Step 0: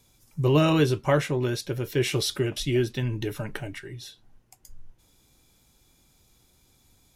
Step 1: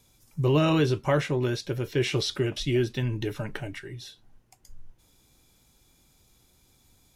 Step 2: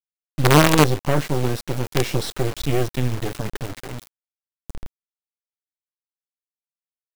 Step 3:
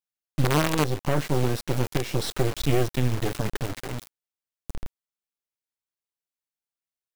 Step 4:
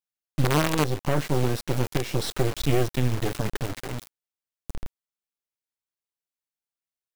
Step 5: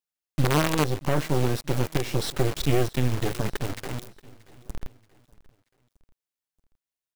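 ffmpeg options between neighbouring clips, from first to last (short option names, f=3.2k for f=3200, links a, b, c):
-filter_complex "[0:a]acrossover=split=6800[a][b];[b]acompressor=threshold=-54dB:ratio=4:attack=1:release=60[c];[a][c]amix=inputs=2:normalize=0,asplit=2[d][e];[e]alimiter=limit=-16.5dB:level=0:latency=1:release=26,volume=-0.5dB[f];[d][f]amix=inputs=2:normalize=0,volume=-6dB"
-af "lowshelf=f=460:g=7,acrusher=bits=3:dc=4:mix=0:aa=0.000001,volume=3.5dB"
-af "alimiter=limit=-10.5dB:level=0:latency=1:release=345"
-af anull
-af "aecho=1:1:630|1260|1890:0.0841|0.0362|0.0156"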